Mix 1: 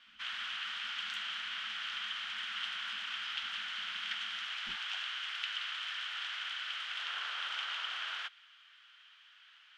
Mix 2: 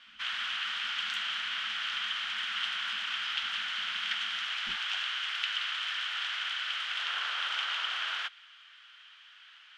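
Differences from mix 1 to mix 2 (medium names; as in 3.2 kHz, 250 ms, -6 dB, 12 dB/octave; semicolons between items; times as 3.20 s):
speech +4.0 dB; background +5.5 dB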